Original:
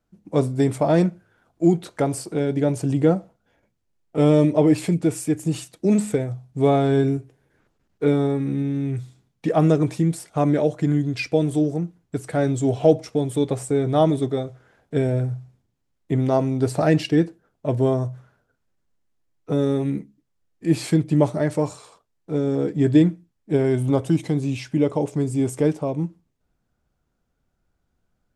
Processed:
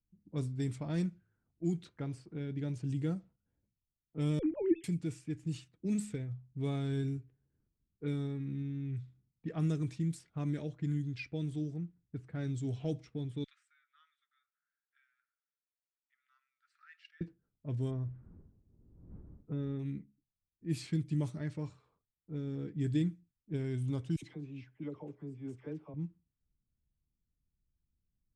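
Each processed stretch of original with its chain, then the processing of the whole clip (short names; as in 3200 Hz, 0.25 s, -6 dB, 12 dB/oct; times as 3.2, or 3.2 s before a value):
4.39–4.84 sine-wave speech + tilt -3.5 dB/oct
13.44–17.21 Chebyshev high-pass 1300 Hz, order 6 + upward compressor, threshold -54 dBFS
17.9–19.78 wind noise 350 Hz -36 dBFS + LPF 2200 Hz
24.16–25.94 tone controls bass -11 dB, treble -1 dB + dispersion lows, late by 68 ms, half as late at 880 Hz
whole clip: passive tone stack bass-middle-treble 6-0-2; low-pass opened by the level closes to 620 Hz, open at -33 dBFS; gain +3.5 dB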